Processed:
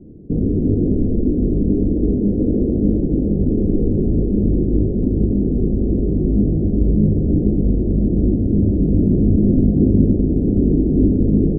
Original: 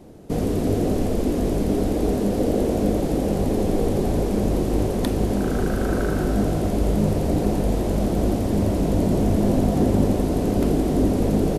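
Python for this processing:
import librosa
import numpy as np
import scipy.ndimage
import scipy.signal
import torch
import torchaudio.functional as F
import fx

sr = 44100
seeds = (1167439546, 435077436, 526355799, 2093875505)

y = scipy.signal.sosfilt(scipy.signal.cheby2(4, 80, 2200.0, 'lowpass', fs=sr, output='sos'), x)
y = F.gain(torch.from_numpy(y), 6.0).numpy()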